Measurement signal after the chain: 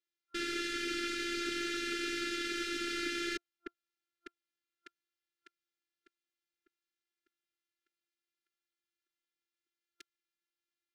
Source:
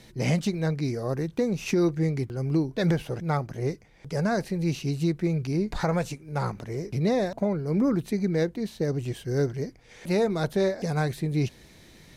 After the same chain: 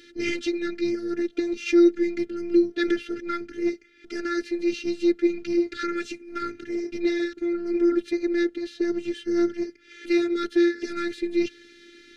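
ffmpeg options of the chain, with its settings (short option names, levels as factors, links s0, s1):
-af "highpass=200,lowpass=4400,afftfilt=real='re*(1-between(b*sr/4096,500,1300))':imag='im*(1-between(b*sr/4096,500,1300))':win_size=4096:overlap=0.75,afftfilt=real='hypot(re,im)*cos(PI*b)':imag='0':win_size=512:overlap=0.75,volume=2.66"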